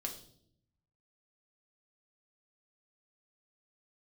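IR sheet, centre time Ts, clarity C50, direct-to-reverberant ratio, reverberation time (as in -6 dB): 16 ms, 9.5 dB, 1.5 dB, 0.65 s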